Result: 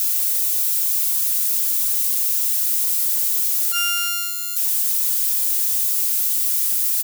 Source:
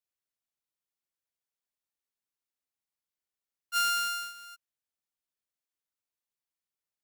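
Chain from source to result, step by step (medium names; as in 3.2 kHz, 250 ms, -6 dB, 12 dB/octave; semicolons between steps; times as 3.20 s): zero-crossing glitches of -27.5 dBFS; comb 7.5 ms, depth 49%; waveshaping leveller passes 2; high-pass 190 Hz 6 dB/octave; treble shelf 4.1 kHz +7 dB; on a send: feedback echo behind a high-pass 161 ms, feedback 74%, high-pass 2.8 kHz, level -20 dB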